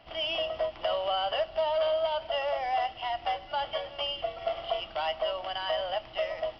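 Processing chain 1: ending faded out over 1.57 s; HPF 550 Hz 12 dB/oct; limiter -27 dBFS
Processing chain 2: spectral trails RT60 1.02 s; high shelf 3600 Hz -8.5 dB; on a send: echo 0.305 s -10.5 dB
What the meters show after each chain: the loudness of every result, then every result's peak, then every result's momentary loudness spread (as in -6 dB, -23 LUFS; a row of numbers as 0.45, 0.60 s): -35.5, -29.0 LUFS; -27.0, -16.5 dBFS; 5, 4 LU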